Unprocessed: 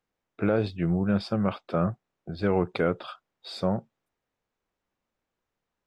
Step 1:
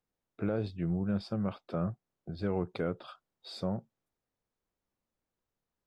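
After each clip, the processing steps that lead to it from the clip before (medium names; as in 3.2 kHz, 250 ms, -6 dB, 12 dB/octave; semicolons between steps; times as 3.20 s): FFT filter 130 Hz 0 dB, 2.5 kHz -7 dB, 4.7 kHz -3 dB; in parallel at -2.5 dB: compression, threshold -36 dBFS, peak gain reduction 14.5 dB; on the sum: trim -7 dB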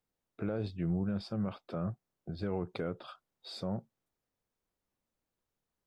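peak limiter -25 dBFS, peak gain reduction 4.5 dB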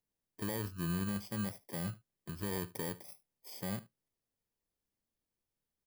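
bit-reversed sample order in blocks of 32 samples; delay 74 ms -20.5 dB; trim -3 dB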